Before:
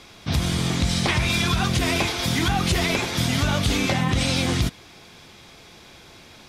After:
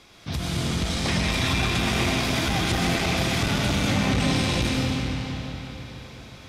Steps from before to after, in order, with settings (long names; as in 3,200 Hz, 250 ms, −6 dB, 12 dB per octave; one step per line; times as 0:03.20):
comb and all-pass reverb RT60 4.2 s, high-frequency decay 0.8×, pre-delay 75 ms, DRR −5 dB
saturating transformer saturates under 250 Hz
level −6 dB